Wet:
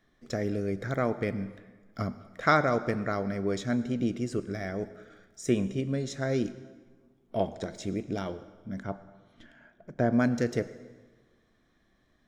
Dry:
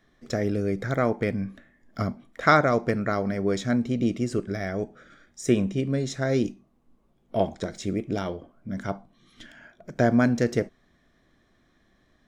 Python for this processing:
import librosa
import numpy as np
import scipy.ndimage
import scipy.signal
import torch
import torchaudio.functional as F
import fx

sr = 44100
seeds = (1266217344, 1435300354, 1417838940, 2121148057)

y = fx.dmg_crackle(x, sr, seeds[0], per_s=70.0, level_db=-56.0, at=(4.8, 5.5), fade=0.02)
y = fx.high_shelf(y, sr, hz=2600.0, db=-12.0, at=(8.8, 10.13))
y = fx.rev_plate(y, sr, seeds[1], rt60_s=1.4, hf_ratio=0.8, predelay_ms=80, drr_db=15.5)
y = F.gain(torch.from_numpy(y), -4.5).numpy()